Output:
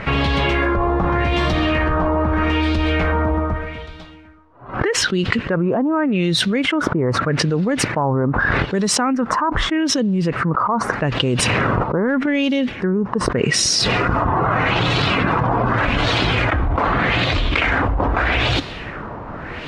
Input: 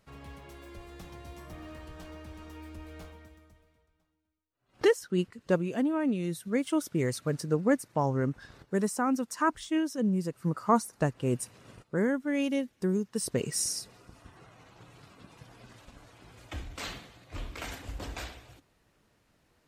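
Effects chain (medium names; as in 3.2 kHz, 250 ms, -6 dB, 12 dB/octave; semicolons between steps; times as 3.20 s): LFO low-pass sine 0.82 Hz 990–3900 Hz; 11.37–12.37 s: transient shaper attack +5 dB, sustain +9 dB; level flattener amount 100%; trim -2.5 dB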